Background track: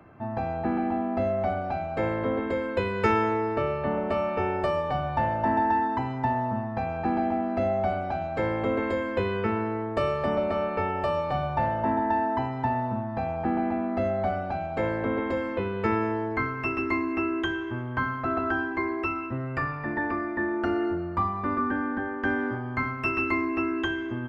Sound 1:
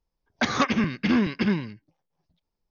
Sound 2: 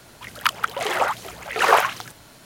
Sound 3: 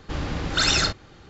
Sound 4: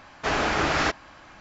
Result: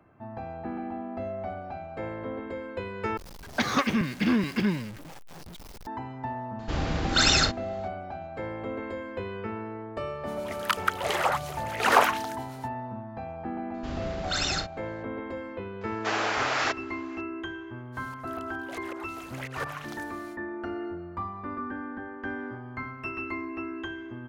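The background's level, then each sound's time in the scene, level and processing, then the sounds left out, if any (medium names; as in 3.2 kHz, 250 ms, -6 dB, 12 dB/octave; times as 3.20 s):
background track -8 dB
3.17 s: replace with 1 -3 dB + jump at every zero crossing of -34.5 dBFS
6.59 s: add 3 -0.5 dB
10.24 s: add 2 -1.5 dB, fades 0.05 s + harmonic tremolo 8.5 Hz, depth 50%, crossover 960 Hz
13.74 s: add 3 -8 dB
15.81 s: add 4 -2.5 dB + high-pass 470 Hz
17.92 s: add 2 -6.5 dB, fades 0.05 s + slow attack 437 ms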